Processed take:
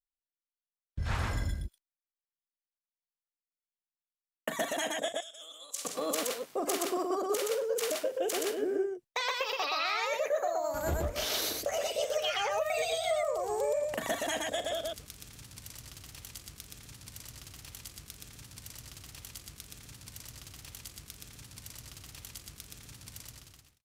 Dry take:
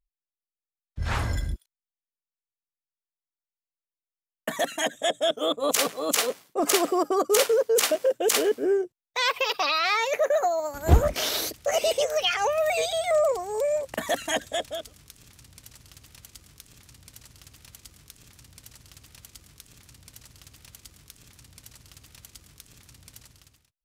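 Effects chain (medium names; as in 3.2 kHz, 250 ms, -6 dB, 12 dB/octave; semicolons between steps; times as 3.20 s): compression 16:1, threshold -30 dBFS, peak gain reduction 19.5 dB; 5.08–5.85 s: band-pass filter 7.4 kHz, Q 1.3; loudspeakers at several distances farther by 14 m -11 dB, 42 m -2 dB; gate with hold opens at -49 dBFS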